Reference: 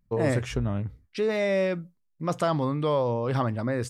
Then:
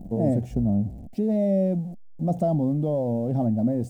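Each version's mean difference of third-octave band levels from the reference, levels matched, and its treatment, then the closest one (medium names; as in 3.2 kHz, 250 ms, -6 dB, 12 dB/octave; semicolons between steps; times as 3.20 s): 9.0 dB: jump at every zero crossing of -35 dBFS; FFT filter 130 Hz 0 dB, 210 Hz +10 dB, 430 Hz -6 dB, 720 Hz +3 dB, 1.1 kHz -27 dB, 4.9 kHz -20 dB, 7.6 kHz -14 dB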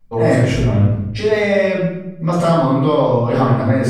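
7.0 dB: in parallel at +2.5 dB: compression, threshold -33 dBFS, peak gain reduction 13 dB; on the sum: simulated room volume 300 m³, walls mixed, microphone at 6.3 m; trim -7.5 dB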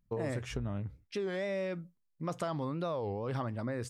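2.5 dB: compression 3:1, threshold -28 dBFS, peak gain reduction 7 dB; warped record 33 1/3 rpm, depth 250 cents; trim -5 dB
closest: third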